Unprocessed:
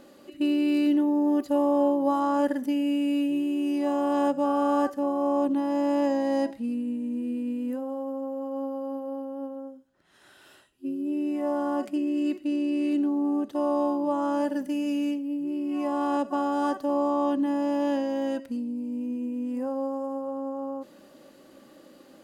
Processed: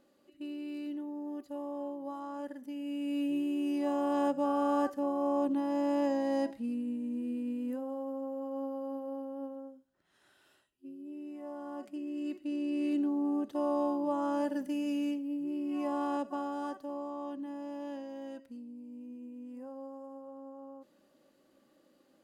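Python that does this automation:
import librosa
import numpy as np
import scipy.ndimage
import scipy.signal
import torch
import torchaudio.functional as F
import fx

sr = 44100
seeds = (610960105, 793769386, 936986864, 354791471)

y = fx.gain(x, sr, db=fx.line((2.61, -16.5), (3.3, -5.5), (9.45, -5.5), (10.88, -15.5), (11.58, -15.5), (12.85, -5.5), (15.92, -5.5), (17.07, -15.0)))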